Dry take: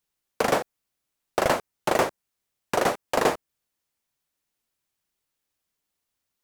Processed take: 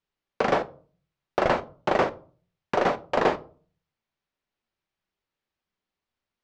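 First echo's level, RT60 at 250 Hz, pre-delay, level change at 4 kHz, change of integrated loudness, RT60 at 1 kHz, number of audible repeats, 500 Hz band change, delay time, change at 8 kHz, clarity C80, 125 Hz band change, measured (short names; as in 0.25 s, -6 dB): none, 0.55 s, 5 ms, -4.0 dB, -0.5 dB, 0.40 s, none, +0.5 dB, none, under -10 dB, 25.5 dB, +1.0 dB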